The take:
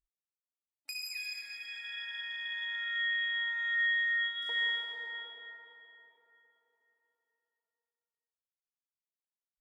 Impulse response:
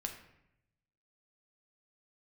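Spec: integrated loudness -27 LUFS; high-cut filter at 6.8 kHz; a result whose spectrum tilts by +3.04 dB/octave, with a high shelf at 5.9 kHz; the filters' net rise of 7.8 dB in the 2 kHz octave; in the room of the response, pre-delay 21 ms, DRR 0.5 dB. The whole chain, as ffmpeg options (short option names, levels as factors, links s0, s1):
-filter_complex "[0:a]lowpass=6800,equalizer=f=2000:t=o:g=7.5,highshelf=f=5900:g=8.5,asplit=2[s0][s1];[1:a]atrim=start_sample=2205,adelay=21[s2];[s1][s2]afir=irnorm=-1:irlink=0,volume=1[s3];[s0][s3]amix=inputs=2:normalize=0,volume=0.398"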